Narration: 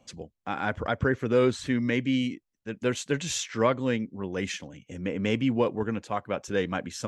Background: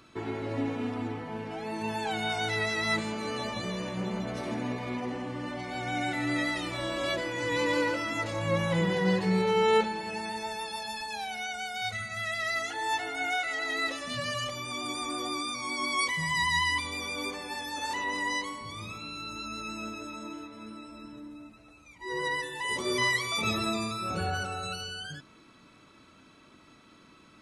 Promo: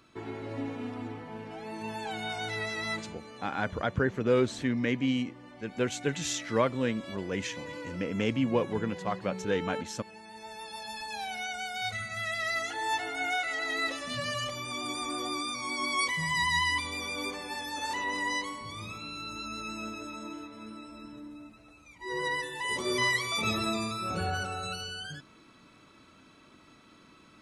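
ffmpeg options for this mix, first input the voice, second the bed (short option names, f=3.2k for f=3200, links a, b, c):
-filter_complex "[0:a]adelay=2950,volume=-2.5dB[a];[1:a]volume=9dB,afade=t=out:st=2.86:d=0.34:silence=0.334965,afade=t=in:st=10.26:d=1.01:silence=0.211349[b];[a][b]amix=inputs=2:normalize=0"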